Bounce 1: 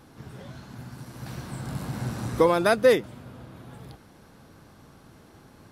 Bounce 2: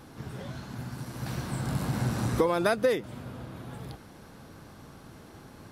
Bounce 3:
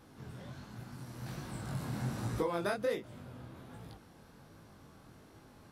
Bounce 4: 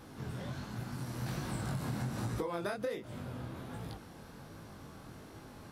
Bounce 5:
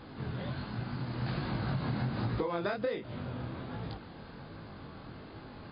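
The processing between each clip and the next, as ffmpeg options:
ffmpeg -i in.wav -af "acompressor=threshold=-25dB:ratio=5,volume=3dB" out.wav
ffmpeg -i in.wav -af "flanger=delay=18:depth=7:speed=1.3,volume=-5.5dB" out.wav
ffmpeg -i in.wav -af "acompressor=threshold=-39dB:ratio=12,volume=6.5dB" out.wav
ffmpeg -i in.wav -af "volume=4dB" -ar 11025 -c:a libmp3lame -b:a 32k out.mp3

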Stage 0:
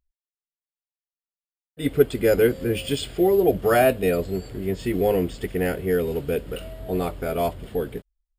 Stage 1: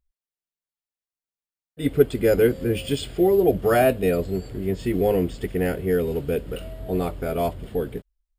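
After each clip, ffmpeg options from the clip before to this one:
ffmpeg -i in.wav -af "lowshelf=frequency=490:gain=4,volume=-2dB" out.wav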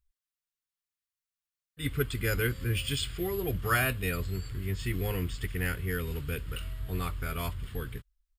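ffmpeg -i in.wav -af "firequalizer=gain_entry='entry(110,0);entry(190,-12);entry(660,-20);entry(1100,0)':delay=0.05:min_phase=1" out.wav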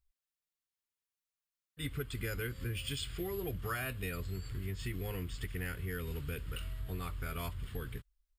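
ffmpeg -i in.wav -af "acompressor=threshold=-32dB:ratio=6,volume=-2.5dB" out.wav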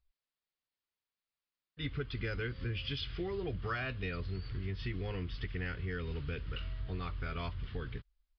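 ffmpeg -i in.wav -af "aresample=11025,aresample=44100,volume=1dB" out.wav

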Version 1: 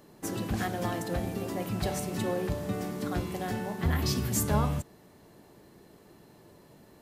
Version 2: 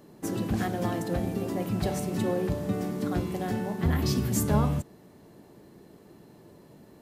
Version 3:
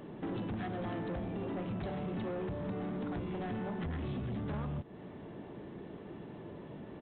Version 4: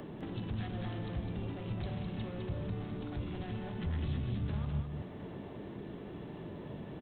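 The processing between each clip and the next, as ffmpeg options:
ffmpeg -i in.wav -af "equalizer=frequency=230:width=0.44:gain=6,volume=-1.5dB" out.wav
ffmpeg -i in.wav -af "acompressor=threshold=-37dB:ratio=5,aresample=8000,asoftclip=type=tanh:threshold=-39.5dB,aresample=44100,volume=6dB" out.wav
ffmpeg -i in.wav -filter_complex "[0:a]acrossover=split=140|3000[link_01][link_02][link_03];[link_02]acompressor=threshold=-51dB:ratio=4[link_04];[link_01][link_04][link_03]amix=inputs=3:normalize=0,asplit=2[link_05][link_06];[link_06]aecho=0:1:207:0.531[link_07];[link_05][link_07]amix=inputs=2:normalize=0,volume=5.5dB" out.wav

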